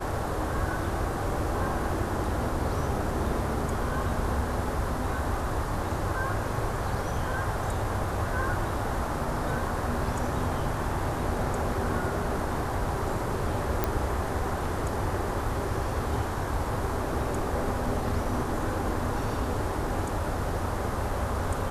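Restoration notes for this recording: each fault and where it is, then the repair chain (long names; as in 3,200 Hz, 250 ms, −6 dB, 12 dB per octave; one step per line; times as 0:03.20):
0:13.84: click −11 dBFS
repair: click removal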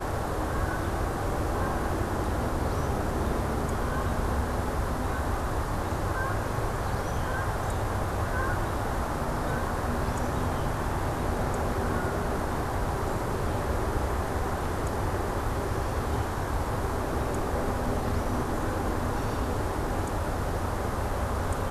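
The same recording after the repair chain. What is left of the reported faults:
none of them is left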